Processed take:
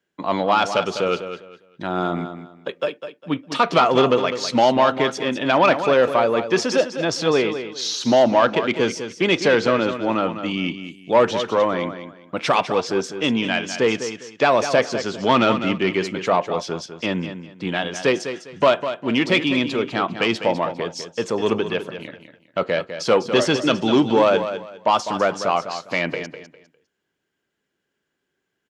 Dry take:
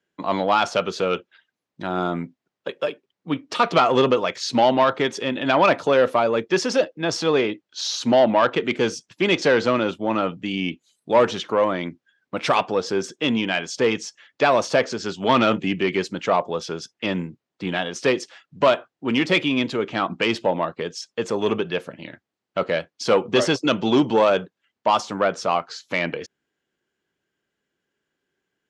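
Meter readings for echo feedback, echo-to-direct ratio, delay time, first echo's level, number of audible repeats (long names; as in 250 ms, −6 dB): 25%, −9.5 dB, 202 ms, −10.0 dB, 3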